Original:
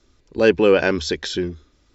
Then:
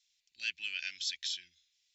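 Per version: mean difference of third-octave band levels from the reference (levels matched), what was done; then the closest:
15.0 dB: inverse Chebyshev high-pass filter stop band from 1,200 Hz, stop band 40 dB
level −7 dB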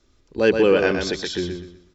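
4.5 dB: repeating echo 123 ms, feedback 31%, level −6 dB
level −2.5 dB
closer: second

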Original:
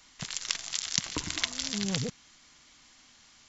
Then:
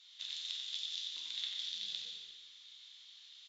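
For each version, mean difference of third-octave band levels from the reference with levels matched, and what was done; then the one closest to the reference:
11.0 dB: downward compressor 6 to 1, threshold −38 dBFS, peak gain reduction 16.5 dB
resonant band-pass 3,600 Hz, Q 9.8
on a send: echo with shifted repeats 90 ms, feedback 58%, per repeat −47 Hz, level −6.5 dB
on the sum: dense smooth reverb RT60 1.1 s, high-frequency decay 0.95×, DRR −1.5 dB
level +8 dB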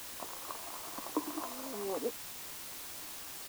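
16.0 dB: elliptic band-pass filter 290–1,100 Hz
in parallel at +1 dB: downward compressor, threshold −55 dBFS, peak gain reduction 21 dB
on the sum: bit-depth reduction 8 bits, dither triangular
double-tracking delay 13 ms −11 dB
level +2.5 dB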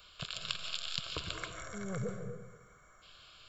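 8.0 dB: gain on a spectral selection 0:01.33–0:03.02, 2,300–5,500 Hz −25 dB
downward compressor 1.5 to 1, threshold −44 dBFS, peak gain reduction 8.5 dB
phaser with its sweep stopped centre 1,300 Hz, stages 8
comb and all-pass reverb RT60 1.1 s, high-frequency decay 0.45×, pre-delay 105 ms, DRR 4 dB
level +4.5 dB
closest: third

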